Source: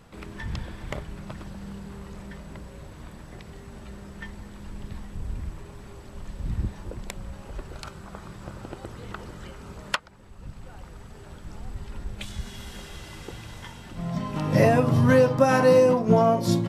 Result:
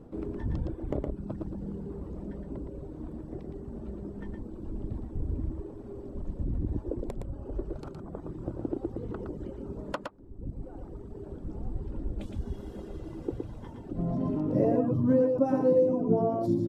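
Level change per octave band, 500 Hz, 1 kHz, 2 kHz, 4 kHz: −5.5, −11.0, −19.5, −19.5 decibels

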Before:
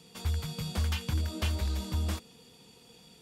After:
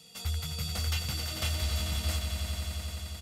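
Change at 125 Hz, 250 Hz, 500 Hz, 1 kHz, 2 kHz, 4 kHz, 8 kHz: −0.5, −4.5, −0.5, +0.5, +3.5, +6.0, +7.0 decibels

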